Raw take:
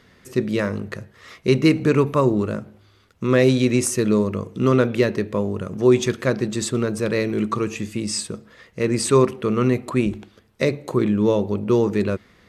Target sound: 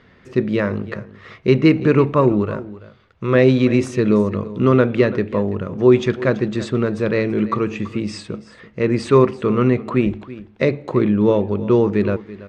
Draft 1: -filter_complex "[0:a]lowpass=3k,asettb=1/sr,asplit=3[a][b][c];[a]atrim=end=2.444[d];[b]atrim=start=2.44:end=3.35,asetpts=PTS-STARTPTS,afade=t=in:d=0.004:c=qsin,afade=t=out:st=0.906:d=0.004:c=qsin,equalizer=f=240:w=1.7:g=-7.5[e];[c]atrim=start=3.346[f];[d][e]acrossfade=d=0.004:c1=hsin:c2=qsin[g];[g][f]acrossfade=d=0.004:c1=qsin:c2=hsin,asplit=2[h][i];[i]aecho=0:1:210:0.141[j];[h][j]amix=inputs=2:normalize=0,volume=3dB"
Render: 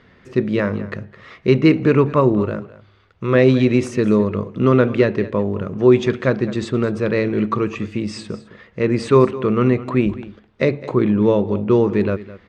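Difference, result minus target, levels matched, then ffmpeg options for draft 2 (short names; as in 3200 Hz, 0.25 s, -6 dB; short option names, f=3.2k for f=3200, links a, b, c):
echo 0.123 s early
-filter_complex "[0:a]lowpass=3k,asettb=1/sr,asplit=3[a][b][c];[a]atrim=end=2.444[d];[b]atrim=start=2.44:end=3.35,asetpts=PTS-STARTPTS,afade=t=in:d=0.004:c=qsin,afade=t=out:st=0.906:d=0.004:c=qsin,equalizer=f=240:w=1.7:g=-7.5[e];[c]atrim=start=3.346[f];[d][e]acrossfade=d=0.004:c1=hsin:c2=qsin[g];[g][f]acrossfade=d=0.004:c1=qsin:c2=hsin,asplit=2[h][i];[i]aecho=0:1:333:0.141[j];[h][j]amix=inputs=2:normalize=0,volume=3dB"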